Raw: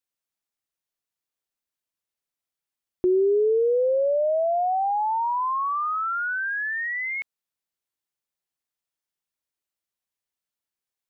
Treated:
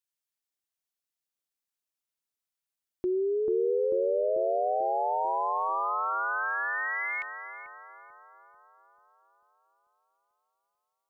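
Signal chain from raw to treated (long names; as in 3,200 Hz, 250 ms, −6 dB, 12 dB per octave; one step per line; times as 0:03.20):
high-shelf EQ 2,100 Hz +7.5 dB
bucket-brigade delay 441 ms, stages 4,096, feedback 59%, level −3 dB
level −8 dB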